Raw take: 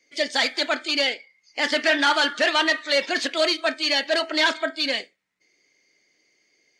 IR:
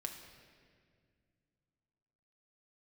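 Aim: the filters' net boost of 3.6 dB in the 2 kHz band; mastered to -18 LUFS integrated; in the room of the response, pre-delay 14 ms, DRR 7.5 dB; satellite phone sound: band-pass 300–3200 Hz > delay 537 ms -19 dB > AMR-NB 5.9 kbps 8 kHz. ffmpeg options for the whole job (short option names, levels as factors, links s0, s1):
-filter_complex "[0:a]equalizer=f=2000:t=o:g=5,asplit=2[s0][s1];[1:a]atrim=start_sample=2205,adelay=14[s2];[s1][s2]afir=irnorm=-1:irlink=0,volume=0.501[s3];[s0][s3]amix=inputs=2:normalize=0,highpass=300,lowpass=3200,aecho=1:1:537:0.112,volume=1.68" -ar 8000 -c:a libopencore_amrnb -b:a 5900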